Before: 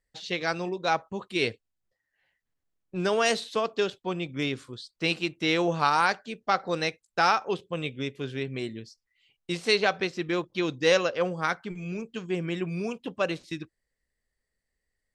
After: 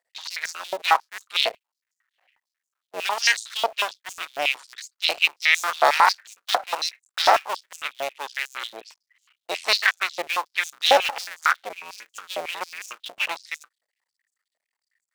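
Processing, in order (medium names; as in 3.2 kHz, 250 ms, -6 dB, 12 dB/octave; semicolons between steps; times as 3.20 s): cycle switcher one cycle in 2, muted; step-sequenced high-pass 11 Hz 670–6800 Hz; trim +4.5 dB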